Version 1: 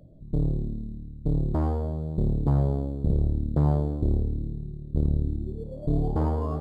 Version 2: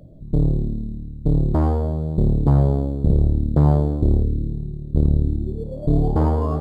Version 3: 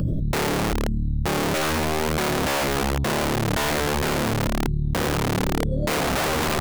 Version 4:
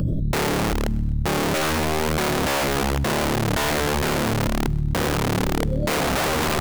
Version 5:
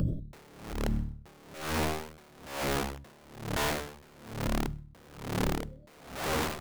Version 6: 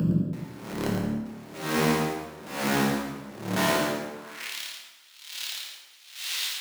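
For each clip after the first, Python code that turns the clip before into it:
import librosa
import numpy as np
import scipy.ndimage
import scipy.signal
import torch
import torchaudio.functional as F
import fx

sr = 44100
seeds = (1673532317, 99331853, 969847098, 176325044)

y1 = fx.spec_box(x, sr, start_s=4.24, length_s=0.26, low_hz=600.0, high_hz=1400.0, gain_db=-14)
y1 = y1 * librosa.db_to_amplitude(7.0)
y2 = fx.phaser_stages(y1, sr, stages=12, low_hz=440.0, high_hz=1000.0, hz=0.54, feedback_pct=10)
y2 = (np.mod(10.0 ** (20.5 / 20.0) * y2 + 1.0, 2.0) - 1.0) / 10.0 ** (20.5 / 20.0)
y2 = fx.env_flatten(y2, sr, amount_pct=100)
y3 = fx.echo_feedback(y2, sr, ms=127, feedback_pct=53, wet_db=-23)
y3 = y3 * librosa.db_to_amplitude(1.0)
y4 = fx.rider(y3, sr, range_db=10, speed_s=2.0)
y4 = fx.rev_plate(y4, sr, seeds[0], rt60_s=2.0, hf_ratio=0.7, predelay_ms=0, drr_db=18.5)
y4 = y4 * 10.0 ** (-28 * (0.5 - 0.5 * np.cos(2.0 * np.pi * 1.1 * np.arange(len(y4)) / sr)) / 20.0)
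y4 = y4 * librosa.db_to_amplitude(-6.5)
y5 = fx.filter_sweep_highpass(y4, sr, from_hz=190.0, to_hz=3400.0, start_s=3.65, end_s=4.55, q=1.9)
y5 = y5 + 10.0 ** (-7.5 / 20.0) * np.pad(y5, (int(112 * sr / 1000.0), 0))[:len(y5)]
y5 = fx.rev_plate(y5, sr, seeds[1], rt60_s=1.2, hf_ratio=0.7, predelay_ms=0, drr_db=-3.0)
y5 = y5 * librosa.db_to_amplitude(1.0)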